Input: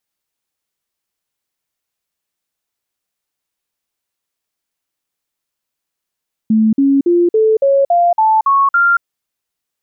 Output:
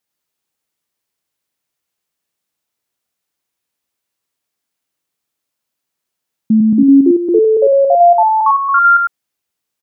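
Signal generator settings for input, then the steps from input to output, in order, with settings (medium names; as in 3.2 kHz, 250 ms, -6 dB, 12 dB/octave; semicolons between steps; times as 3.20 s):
stepped sine 219 Hz up, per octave 3, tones 9, 0.23 s, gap 0.05 s -8 dBFS
high-pass 140 Hz 6 dB/octave; bass shelf 300 Hz +5.5 dB; on a send: delay 102 ms -3 dB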